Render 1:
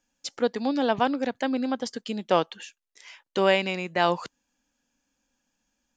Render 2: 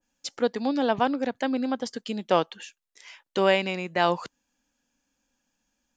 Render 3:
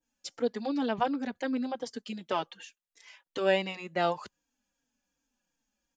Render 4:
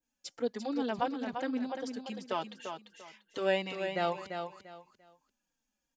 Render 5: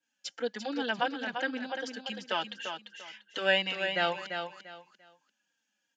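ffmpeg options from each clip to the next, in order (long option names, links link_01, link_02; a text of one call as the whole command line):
ffmpeg -i in.wav -af "adynamicequalizer=threshold=0.0158:dfrequency=1800:dqfactor=0.7:tfrequency=1800:tqfactor=0.7:attack=5:release=100:ratio=0.375:range=1.5:mode=cutabove:tftype=highshelf" out.wav
ffmpeg -i in.wav -filter_complex "[0:a]asplit=2[link_01][link_02];[link_02]adelay=3.9,afreqshift=-2.7[link_03];[link_01][link_03]amix=inputs=2:normalize=1,volume=-3dB" out.wav
ffmpeg -i in.wav -af "aecho=1:1:344|688|1032:0.447|0.112|0.0279,volume=-3.5dB" out.wav
ffmpeg -i in.wav -af "highpass=frequency=190:width=0.5412,highpass=frequency=190:width=1.3066,equalizer=frequency=250:width_type=q:width=4:gain=-8,equalizer=frequency=400:width_type=q:width=4:gain=-9,equalizer=frequency=650:width_type=q:width=4:gain=-4,equalizer=frequency=1100:width_type=q:width=4:gain=-6,equalizer=frequency=1600:width_type=q:width=4:gain=9,equalizer=frequency=3000:width_type=q:width=4:gain=8,lowpass=frequency=7800:width=0.5412,lowpass=frequency=7800:width=1.3066,volume=4dB" out.wav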